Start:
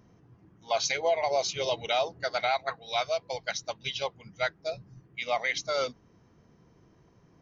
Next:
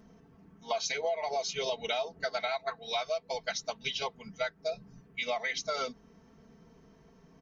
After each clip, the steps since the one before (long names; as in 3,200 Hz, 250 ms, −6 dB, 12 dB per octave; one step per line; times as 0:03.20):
comb filter 4.5 ms, depth 96%
downward compressor 5 to 1, threshold −30 dBFS, peak gain reduction 12.5 dB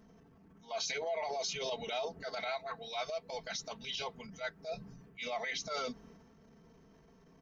transient designer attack −10 dB, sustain +6 dB
level −3 dB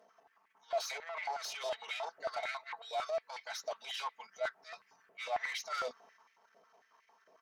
tube saturation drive 36 dB, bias 0.45
high-pass on a step sequencer 11 Hz 610–2,100 Hz
level −1 dB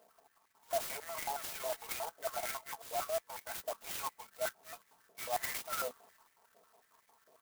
converter with an unsteady clock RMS 0.083 ms